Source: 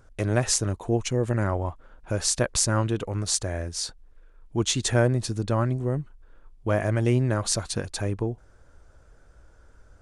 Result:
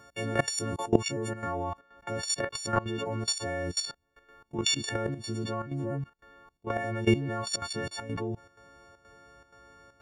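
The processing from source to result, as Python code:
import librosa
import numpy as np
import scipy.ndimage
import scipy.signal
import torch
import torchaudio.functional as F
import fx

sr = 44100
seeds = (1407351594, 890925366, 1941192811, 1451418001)

y = fx.freq_snap(x, sr, grid_st=4)
y = scipy.signal.sosfilt(scipy.signal.butter(2, 130.0, 'highpass', fs=sr, output='sos'), y)
y = fx.peak_eq(y, sr, hz=9900.0, db=-10.0, octaves=0.56)
y = fx.level_steps(y, sr, step_db=22)
y = fx.chopper(y, sr, hz=2.1, depth_pct=65, duty_pct=80)
y = fx.over_compress(y, sr, threshold_db=-29.0, ratio=-0.5)
y = fx.high_shelf(y, sr, hz=4200.0, db=fx.steps((0.0, -4.0), (1.63, -11.5)))
y = y * librosa.db_to_amplitude(7.0)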